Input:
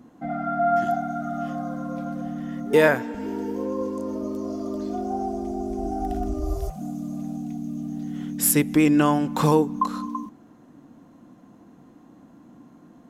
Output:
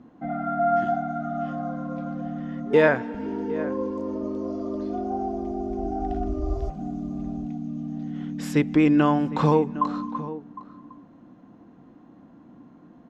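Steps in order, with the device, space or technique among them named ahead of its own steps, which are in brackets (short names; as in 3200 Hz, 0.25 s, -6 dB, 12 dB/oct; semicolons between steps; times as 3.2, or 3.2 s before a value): shout across a valley (air absorption 180 m; outdoor echo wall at 130 m, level -15 dB)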